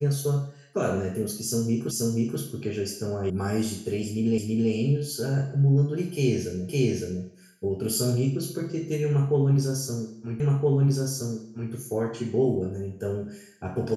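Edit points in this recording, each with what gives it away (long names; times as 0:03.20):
0:01.91: the same again, the last 0.48 s
0:03.30: cut off before it has died away
0:04.38: the same again, the last 0.33 s
0:06.69: the same again, the last 0.56 s
0:10.40: the same again, the last 1.32 s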